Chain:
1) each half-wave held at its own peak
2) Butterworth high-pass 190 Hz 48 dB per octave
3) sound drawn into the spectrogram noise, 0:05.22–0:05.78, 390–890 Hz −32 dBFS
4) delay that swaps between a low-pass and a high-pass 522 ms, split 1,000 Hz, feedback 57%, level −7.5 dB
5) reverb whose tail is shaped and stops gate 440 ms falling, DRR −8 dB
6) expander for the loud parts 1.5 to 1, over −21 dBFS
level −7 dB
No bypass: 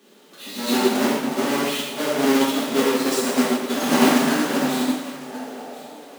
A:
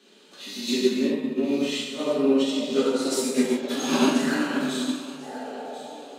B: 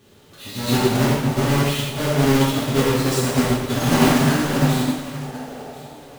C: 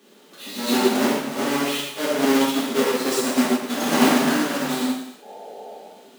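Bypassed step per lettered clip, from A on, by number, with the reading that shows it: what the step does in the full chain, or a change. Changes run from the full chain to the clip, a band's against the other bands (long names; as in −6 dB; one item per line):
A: 1, distortion level −5 dB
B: 2, 125 Hz band +18.0 dB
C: 4, change in momentary loudness spread +4 LU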